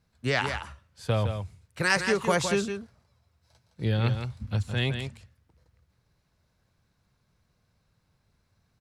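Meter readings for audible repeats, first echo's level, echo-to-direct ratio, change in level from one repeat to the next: 1, -7.5 dB, -7.5 dB, no steady repeat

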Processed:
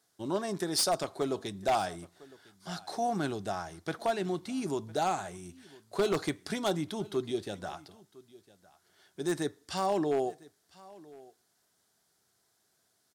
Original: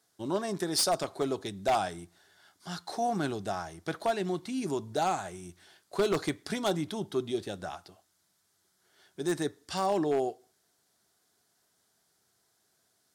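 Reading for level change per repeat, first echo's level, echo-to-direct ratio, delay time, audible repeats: no steady repeat, -22.0 dB, -22.0 dB, 1.006 s, 1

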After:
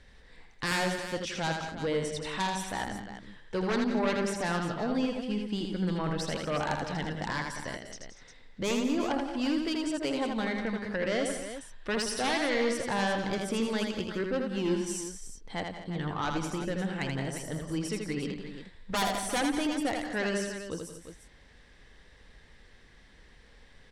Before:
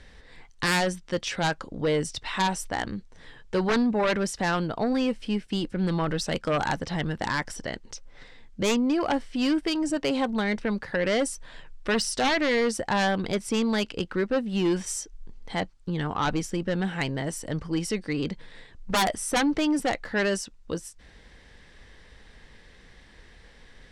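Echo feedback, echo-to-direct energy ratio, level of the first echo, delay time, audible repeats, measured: no steady repeat, -2.5 dB, -4.5 dB, 81 ms, 4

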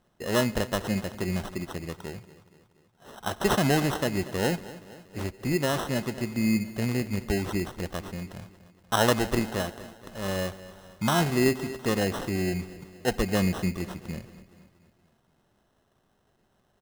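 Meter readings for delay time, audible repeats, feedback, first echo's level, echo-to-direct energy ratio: 0.237 s, 4, 55%, -17.0 dB, -15.5 dB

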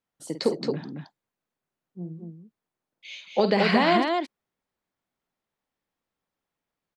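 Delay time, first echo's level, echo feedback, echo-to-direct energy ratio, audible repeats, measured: 50 ms, -9.5 dB, no steady repeat, -3.0 dB, 2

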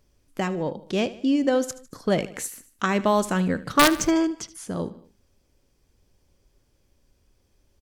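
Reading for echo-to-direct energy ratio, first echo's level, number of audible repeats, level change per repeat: -15.5 dB, -17.0 dB, 3, -5.5 dB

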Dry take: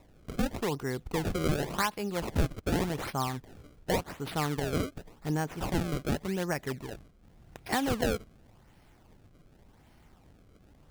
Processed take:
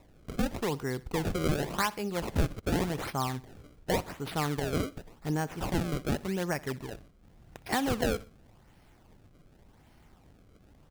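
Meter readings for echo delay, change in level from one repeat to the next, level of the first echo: 62 ms, -6.5 dB, -20.5 dB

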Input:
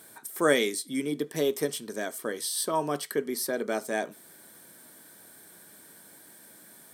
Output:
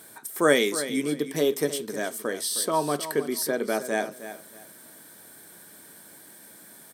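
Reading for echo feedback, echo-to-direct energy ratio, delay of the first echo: 24%, -12.0 dB, 0.312 s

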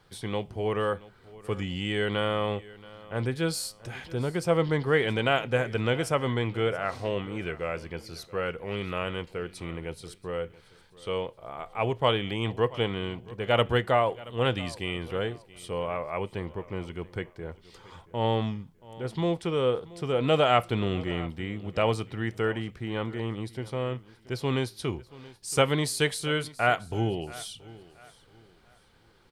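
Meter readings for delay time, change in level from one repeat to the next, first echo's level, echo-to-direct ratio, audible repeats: 0.678 s, -10.0 dB, -20.0 dB, -19.5 dB, 2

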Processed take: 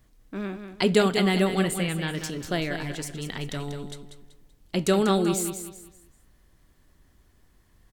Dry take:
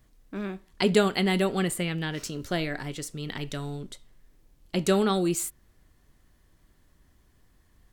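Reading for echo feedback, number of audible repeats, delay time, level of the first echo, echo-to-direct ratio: 33%, 3, 0.191 s, -8.5 dB, -8.0 dB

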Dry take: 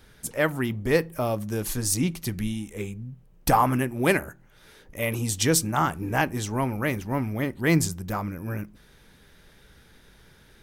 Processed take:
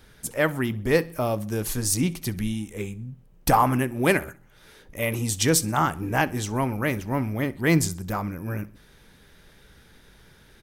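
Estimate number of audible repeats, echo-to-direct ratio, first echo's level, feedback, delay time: 2, -21.0 dB, -22.0 dB, 46%, 64 ms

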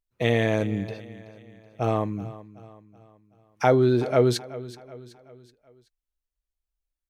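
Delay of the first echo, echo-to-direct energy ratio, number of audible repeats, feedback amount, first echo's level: 0.377 s, -16.0 dB, 3, 46%, -17.0 dB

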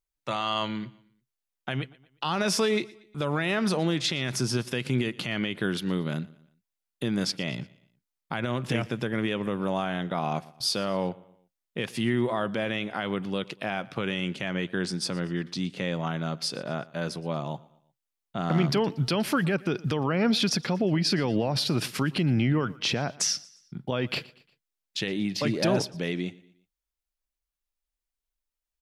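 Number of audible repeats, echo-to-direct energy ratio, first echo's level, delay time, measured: 2, -21.0 dB, -22.0 dB, 0.118 s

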